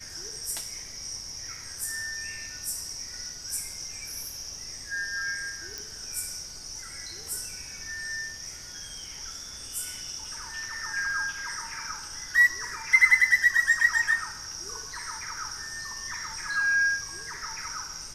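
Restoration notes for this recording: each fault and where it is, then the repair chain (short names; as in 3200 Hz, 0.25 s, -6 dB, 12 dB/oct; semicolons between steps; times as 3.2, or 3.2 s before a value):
5.78 pop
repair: de-click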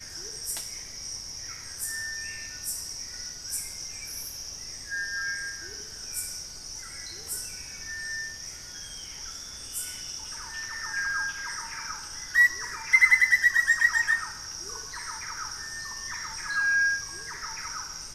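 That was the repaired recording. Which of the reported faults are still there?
5.78 pop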